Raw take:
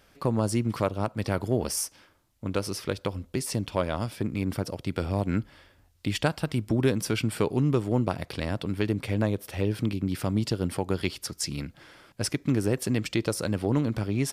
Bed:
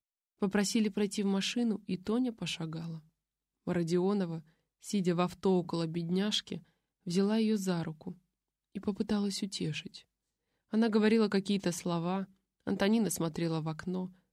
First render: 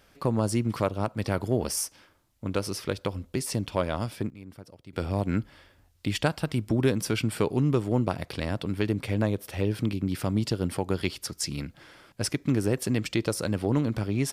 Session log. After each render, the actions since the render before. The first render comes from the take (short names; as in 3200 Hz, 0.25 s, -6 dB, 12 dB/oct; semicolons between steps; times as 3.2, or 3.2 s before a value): 3.9–5.33 dip -16 dB, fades 0.40 s logarithmic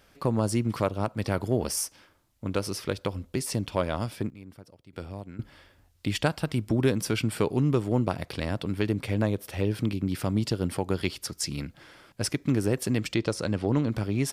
4.3–5.39 fade out, to -20.5 dB; 13.14–13.91 LPF 7300 Hz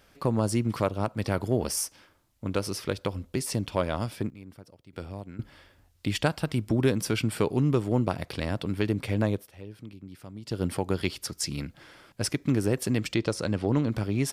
9.35–10.59 dip -16 dB, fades 0.14 s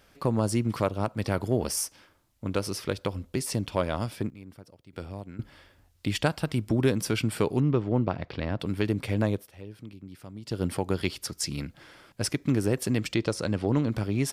7.6–8.6 air absorption 200 m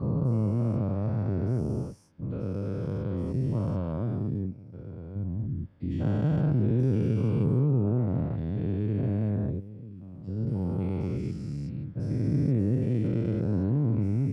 spectral dilation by 0.48 s; band-pass 130 Hz, Q 1.5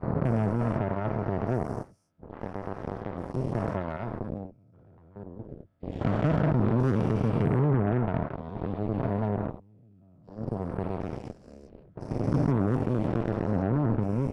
small resonant body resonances 670/1300 Hz, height 13 dB, ringing for 45 ms; added harmonics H 7 -15 dB, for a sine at -14.5 dBFS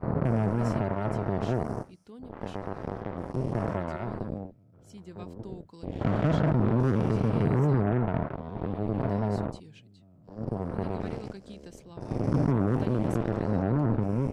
add bed -16 dB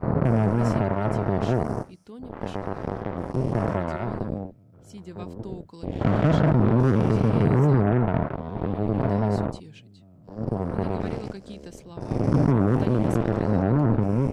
gain +5 dB